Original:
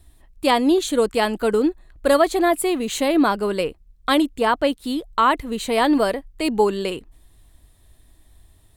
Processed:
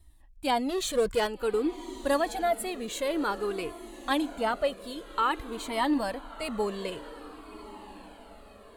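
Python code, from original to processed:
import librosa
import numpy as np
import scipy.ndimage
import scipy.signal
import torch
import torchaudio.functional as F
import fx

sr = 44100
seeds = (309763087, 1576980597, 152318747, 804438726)

y = fx.power_curve(x, sr, exponent=0.7, at=(0.69, 1.27))
y = fx.echo_diffused(y, sr, ms=1183, feedback_pct=45, wet_db=-15.0)
y = fx.comb_cascade(y, sr, direction='falling', hz=0.52)
y = F.gain(torch.from_numpy(y), -5.0).numpy()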